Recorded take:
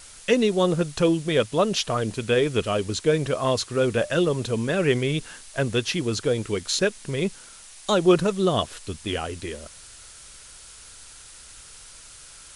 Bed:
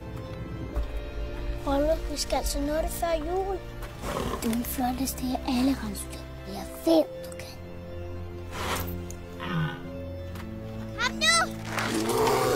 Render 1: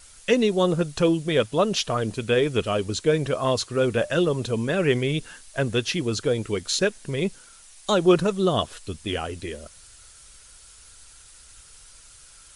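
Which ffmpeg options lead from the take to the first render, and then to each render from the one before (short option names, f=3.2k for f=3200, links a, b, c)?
-af "afftdn=nr=6:nf=-46"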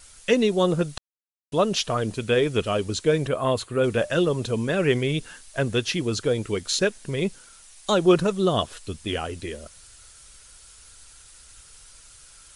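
-filter_complex "[0:a]asettb=1/sr,asplit=3[a][b][c];[a]atrim=end=3.274[d];[b]atrim=start=3.27:end=3.84,asetpts=PTS-STARTPTS,afade=t=in:d=0.004:c=qsin,afade=t=out:st=0.566:d=0.004:c=qsin,equalizer=f=5.5k:w=1.9:g=-12.5[e];[c]atrim=start=3.836[f];[d][e]acrossfade=d=0.004:c1=hsin:c2=qsin[g];[g][f]acrossfade=d=0.004:c1=qsin:c2=hsin,asplit=3[h][i][j];[h]atrim=end=0.98,asetpts=PTS-STARTPTS,afade=t=out:st=0.976:d=0.004:c=hsin[k];[i]atrim=start=0.98:end=1.52,asetpts=PTS-STARTPTS,volume=0[l];[j]atrim=start=1.52,asetpts=PTS-STARTPTS,afade=t=in:d=0.004:c=hsin[m];[k][l][m]concat=n=3:v=0:a=1"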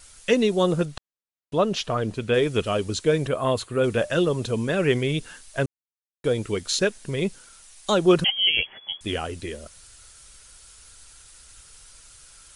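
-filter_complex "[0:a]asettb=1/sr,asplit=3[a][b][c];[a]atrim=end=0.854[d];[b]atrim=start=0.85:end=2.34,asetpts=PTS-STARTPTS,afade=t=in:d=0.004:c=qsin,afade=t=out:st=1.486:d=0.004:c=qsin,highshelf=f=5.3k:g=-10.5[e];[c]atrim=start=2.336[f];[d][e]acrossfade=d=0.004:c1=hsin:c2=qsin[g];[g][f]acrossfade=d=0.004:c1=qsin:c2=hsin,asettb=1/sr,asplit=3[h][i][j];[h]atrim=end=8.244[k];[i]atrim=start=8.24:end=9.01,asetpts=PTS-STARTPTS,afade=t=in:d=0.004:c=qsin,afade=t=out:st=0.766:d=0.004:c=qsin,lowpass=f=2.9k:t=q:w=0.5098,lowpass=f=2.9k:t=q:w=0.6013,lowpass=f=2.9k:t=q:w=0.9,lowpass=f=2.9k:t=q:w=2.563,afreqshift=-3400[l];[j]atrim=start=9.006[m];[k][l]acrossfade=d=0.004:c1=hsin:c2=qsin[n];[n][m]acrossfade=d=0.004:c1=qsin:c2=hsin,asplit=3[o][p][q];[o]atrim=end=5.66,asetpts=PTS-STARTPTS,afade=t=out:st=5.656:d=0.004:c=hsin[r];[p]atrim=start=5.66:end=6.24,asetpts=PTS-STARTPTS,volume=0[s];[q]atrim=start=6.24,asetpts=PTS-STARTPTS,afade=t=in:d=0.004:c=hsin[t];[r][s][t]concat=n=3:v=0:a=1"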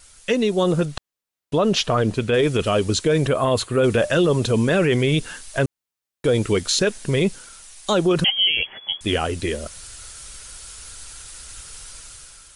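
-af "dynaudnorm=f=190:g=7:m=10dB,alimiter=limit=-10.5dB:level=0:latency=1:release=26"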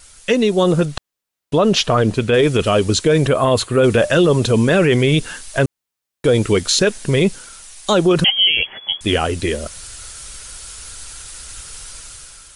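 -af "volume=4.5dB"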